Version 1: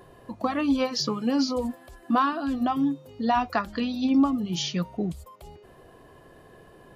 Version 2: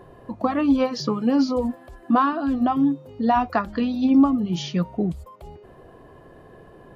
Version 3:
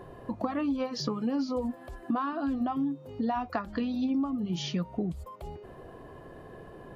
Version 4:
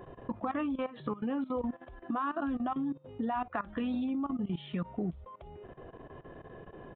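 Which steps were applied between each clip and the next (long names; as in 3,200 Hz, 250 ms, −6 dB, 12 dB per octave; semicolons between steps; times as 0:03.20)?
high-shelf EQ 2,400 Hz −11.5 dB; level +5 dB
downward compressor 4 to 1, threshold −29 dBFS, peak gain reduction 14.5 dB
dynamic equaliser 1,400 Hz, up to +5 dB, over −48 dBFS, Q 0.88; downsampling to 8,000 Hz; output level in coarse steps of 16 dB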